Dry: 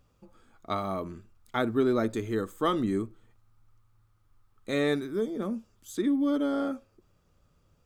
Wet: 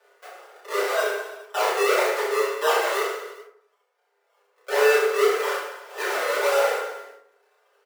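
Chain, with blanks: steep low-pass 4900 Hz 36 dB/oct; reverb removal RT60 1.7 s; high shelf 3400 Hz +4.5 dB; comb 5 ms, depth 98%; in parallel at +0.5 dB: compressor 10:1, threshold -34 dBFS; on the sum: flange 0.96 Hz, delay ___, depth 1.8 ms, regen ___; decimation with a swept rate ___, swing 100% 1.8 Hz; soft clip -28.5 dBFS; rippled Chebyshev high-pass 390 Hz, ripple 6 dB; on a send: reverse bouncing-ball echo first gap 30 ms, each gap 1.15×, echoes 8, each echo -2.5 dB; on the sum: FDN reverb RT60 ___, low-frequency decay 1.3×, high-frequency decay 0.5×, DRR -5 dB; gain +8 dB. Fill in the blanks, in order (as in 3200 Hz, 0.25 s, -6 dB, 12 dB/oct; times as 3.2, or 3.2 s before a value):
0.9 ms, -82%, 39×, 0.61 s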